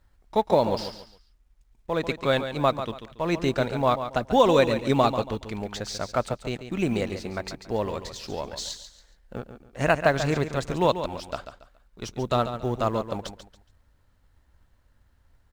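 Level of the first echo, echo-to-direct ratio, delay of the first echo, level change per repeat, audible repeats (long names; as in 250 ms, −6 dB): −10.0 dB, −9.5 dB, 140 ms, −10.5 dB, 3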